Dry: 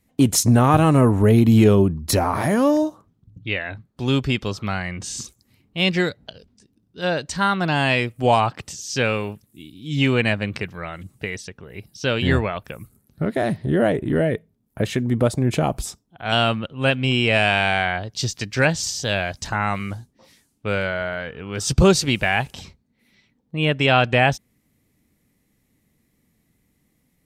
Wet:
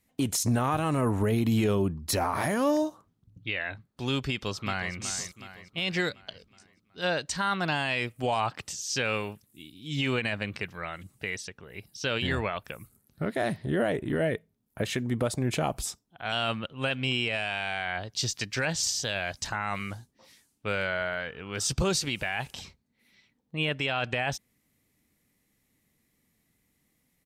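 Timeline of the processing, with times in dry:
4.28–4.94 s: echo throw 370 ms, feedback 55%, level -11.5 dB
whole clip: tilt shelf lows -3.5 dB, about 650 Hz; peak limiter -12.5 dBFS; trim -5.5 dB

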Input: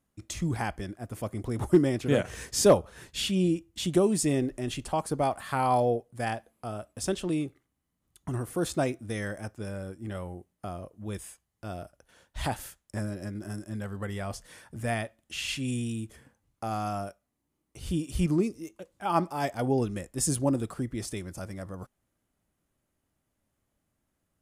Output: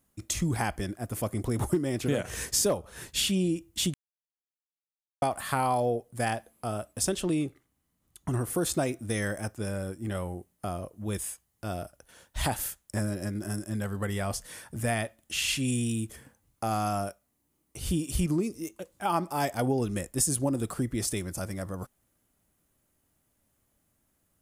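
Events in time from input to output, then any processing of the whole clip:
3.94–5.22 s: mute
7.21–8.50 s: treble shelf 8 kHz -5.5 dB
whole clip: treble shelf 8.4 kHz +11 dB; compression 6:1, threshold -27 dBFS; trim +3.5 dB

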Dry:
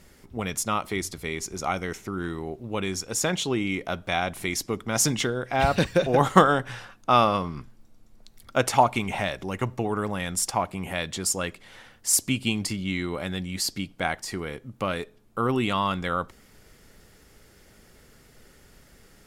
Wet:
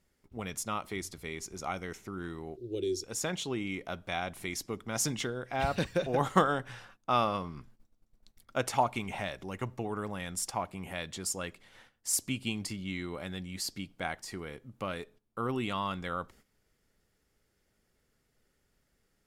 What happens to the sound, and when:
2.57–3.04 s: FFT filter 120 Hz 0 dB, 220 Hz -13 dB, 360 Hz +14 dB, 1 kHz -30 dB, 2.3 kHz -14 dB, 4 kHz +5 dB, 7.8 kHz -2 dB
whole clip: gate -48 dBFS, range -12 dB; trim -8.5 dB

